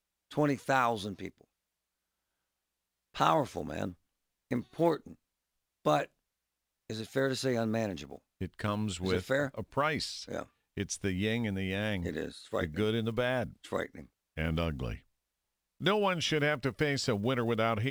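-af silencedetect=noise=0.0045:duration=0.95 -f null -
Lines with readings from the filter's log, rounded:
silence_start: 1.41
silence_end: 3.14 | silence_duration: 1.73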